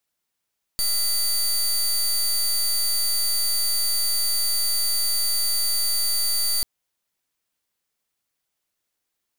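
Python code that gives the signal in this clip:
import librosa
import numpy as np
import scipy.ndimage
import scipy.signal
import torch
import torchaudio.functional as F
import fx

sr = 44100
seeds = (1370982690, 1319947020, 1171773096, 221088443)

y = fx.pulse(sr, length_s=5.84, hz=4610.0, level_db=-22.0, duty_pct=22)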